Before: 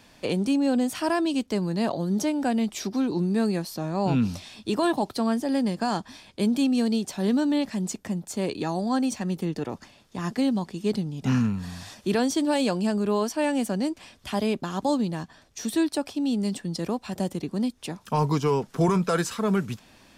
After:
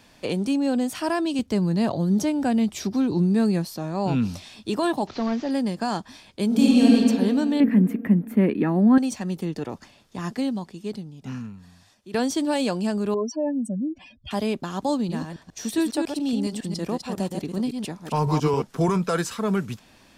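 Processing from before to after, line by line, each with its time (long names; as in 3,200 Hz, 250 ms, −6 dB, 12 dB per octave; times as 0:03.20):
0:01.39–0:03.68: parametric band 93 Hz +11.5 dB 1.8 octaves
0:05.07–0:05.51: linear delta modulator 32 kbit/s, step −39.5 dBFS
0:06.46–0:06.94: thrown reverb, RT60 2.3 s, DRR −6.5 dB
0:07.60–0:08.98: drawn EQ curve 120 Hz 0 dB, 210 Hz +13 dB, 790 Hz −2 dB, 2,000 Hz +8 dB, 4,800 Hz −22 dB, 7,100 Hz −25 dB, 13,000 Hz +3 dB
0:10.20–0:12.14: fade out quadratic, to −16.5 dB
0:13.14–0:14.31: expanding power law on the bin magnitudes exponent 2.9
0:14.95–0:18.62: delay that plays each chunk backwards 138 ms, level −5 dB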